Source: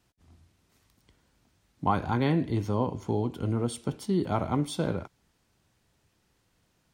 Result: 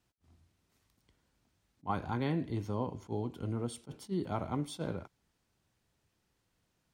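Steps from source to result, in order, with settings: attacks held to a fixed rise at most 430 dB/s; trim -7.5 dB

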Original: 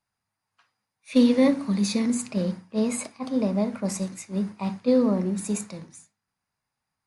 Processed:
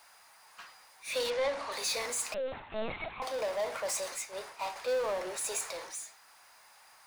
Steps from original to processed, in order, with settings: inverse Chebyshev high-pass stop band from 210 Hz, stop band 50 dB; power-law waveshaper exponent 0.5; 1.30–1.72 s: distance through air 73 m; 2.34–3.22 s: LPC vocoder at 8 kHz pitch kept; 4.18–4.76 s: upward expansion 1.5:1, over -38 dBFS; trim -7 dB

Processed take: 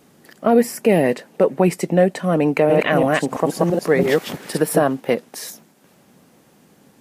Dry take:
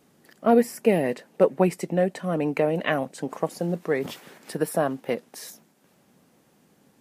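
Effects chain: 2.53–4.83 s: chunks repeated in reverse 167 ms, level -1 dB; loudness maximiser +12 dB; trim -4 dB

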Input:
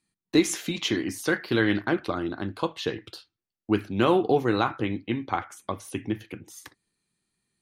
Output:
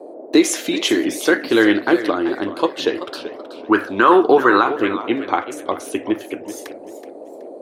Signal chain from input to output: resonant low shelf 220 Hz -13 dB, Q 1.5; band noise 270–670 Hz -44 dBFS; 3.06–4.63 s: high-order bell 1.3 kHz +12.5 dB 1.1 oct; loudness maximiser +9.5 dB; modulated delay 380 ms, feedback 32%, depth 165 cents, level -12.5 dB; trim -1.5 dB

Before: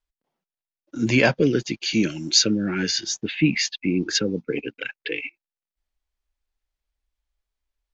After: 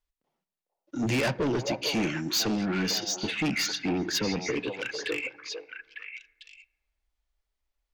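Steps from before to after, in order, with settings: treble shelf 5.1 kHz -2 dB; band-stop 1.6 kHz, Q 21; saturation -23.5 dBFS, distortion -6 dB; repeats whose band climbs or falls 450 ms, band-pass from 660 Hz, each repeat 1.4 oct, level -2 dB; on a send at -17.5 dB: reverberation RT60 1.4 s, pre-delay 4 ms

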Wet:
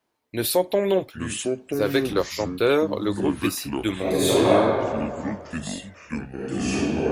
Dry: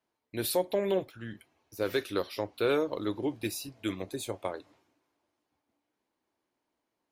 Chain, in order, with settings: 3.99–4.56 s: reverb throw, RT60 2.1 s, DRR -10.5 dB; ever faster or slower copies 675 ms, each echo -6 st, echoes 2, each echo -6 dB; 2.13–2.60 s: three bands expanded up and down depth 70%; trim +7.5 dB

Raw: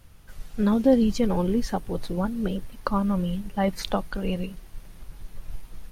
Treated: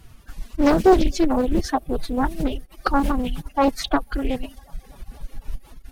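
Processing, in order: feedback echo behind a band-pass 247 ms, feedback 73%, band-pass 660 Hz, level -22.5 dB; formant-preserving pitch shift +6 st; reverb removal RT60 0.97 s; loudspeaker Doppler distortion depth 0.59 ms; trim +6.5 dB

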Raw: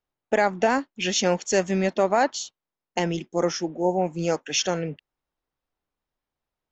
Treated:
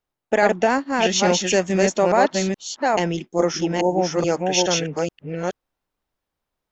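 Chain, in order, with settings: chunks repeated in reverse 424 ms, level -2 dB; trim +2.5 dB

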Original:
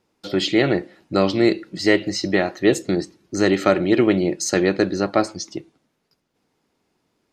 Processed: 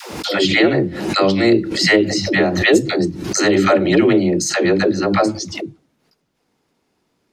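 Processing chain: phase dispersion lows, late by 134 ms, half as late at 350 Hz; swell ahead of each attack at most 54 dB/s; trim +3 dB

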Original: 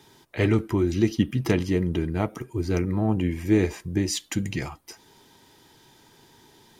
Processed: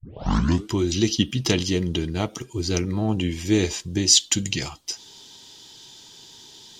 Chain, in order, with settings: tape start-up on the opening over 0.68 s; high-order bell 4.7 kHz +14.5 dB

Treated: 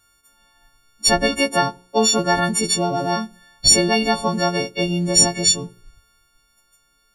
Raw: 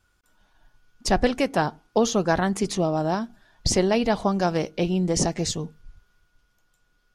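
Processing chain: partials quantised in pitch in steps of 4 st; de-hum 60.16 Hz, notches 17; trim +2 dB

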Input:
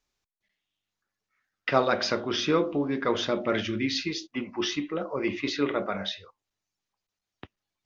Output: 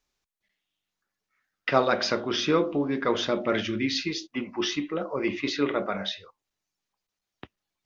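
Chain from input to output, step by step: peaking EQ 91 Hz -5 dB 0.44 oct; trim +1 dB

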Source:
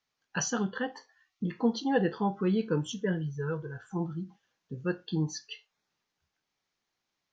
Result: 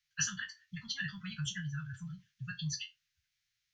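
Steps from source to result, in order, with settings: spectral sustain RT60 0.38 s; time stretch by phase-locked vocoder 0.51×; inverse Chebyshev band-stop 300–750 Hz, stop band 60 dB; trim +2 dB

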